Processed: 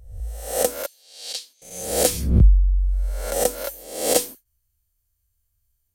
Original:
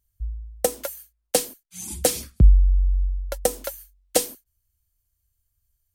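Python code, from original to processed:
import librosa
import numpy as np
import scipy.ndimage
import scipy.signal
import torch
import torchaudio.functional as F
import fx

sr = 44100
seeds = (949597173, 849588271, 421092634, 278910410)

y = fx.spec_swells(x, sr, rise_s=0.69)
y = fx.bandpass_q(y, sr, hz=4100.0, q=2.6, at=(0.86, 1.62))
y = F.gain(torch.from_numpy(y), -1.0).numpy()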